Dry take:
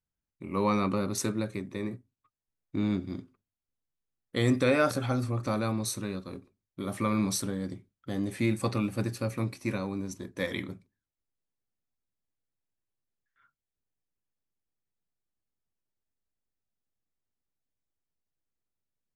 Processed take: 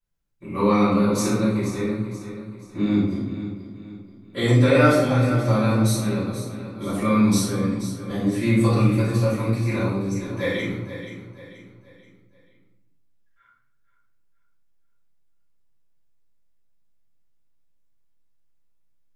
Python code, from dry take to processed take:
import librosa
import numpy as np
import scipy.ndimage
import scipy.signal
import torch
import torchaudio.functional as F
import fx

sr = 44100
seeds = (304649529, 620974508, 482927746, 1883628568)

y = fx.high_shelf(x, sr, hz=8500.0, db=-5.5, at=(10.07, 10.66))
y = fx.echo_feedback(y, sr, ms=480, feedback_pct=40, wet_db=-11.5)
y = fx.room_shoebox(y, sr, seeds[0], volume_m3=200.0, walls='mixed', distance_m=5.6)
y = y * 10.0 ** (-7.5 / 20.0)